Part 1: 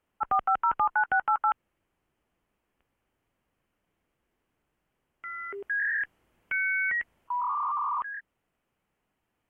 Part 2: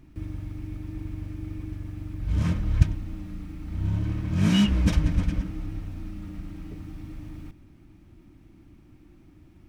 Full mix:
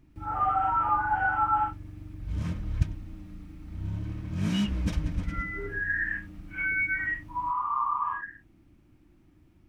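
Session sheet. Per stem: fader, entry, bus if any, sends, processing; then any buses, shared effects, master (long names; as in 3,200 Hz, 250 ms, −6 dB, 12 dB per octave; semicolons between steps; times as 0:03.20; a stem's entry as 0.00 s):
0.0 dB, 0.10 s, no send, random phases in long frames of 200 ms
−7.0 dB, 0.00 s, no send, no processing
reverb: not used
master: no processing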